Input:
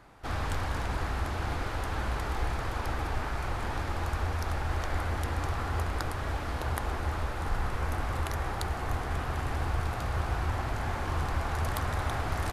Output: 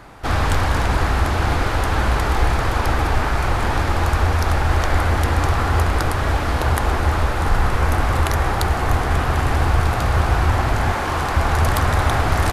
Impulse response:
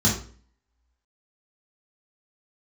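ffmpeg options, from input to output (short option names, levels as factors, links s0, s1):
-filter_complex "[0:a]asettb=1/sr,asplit=3[s0][s1][s2];[s0]atrim=end=10.924[s3];[s1]atrim=start=10.92:end=11.37,asetpts=PTS-STARTPTS,afade=t=in:d=0.004:c=qsin,afade=t=out:st=0.446:d=0.004:c=qsin,lowshelf=f=170:g=-9.5[s4];[s2]atrim=start=11.366[s5];[s3][s4]acrossfade=d=0.004:c1=hsin:c2=qsin[s6];[s6][s5]acrossfade=d=0.004:c1=qsin:c2=hsin,apsyclip=10.6,volume=0.447"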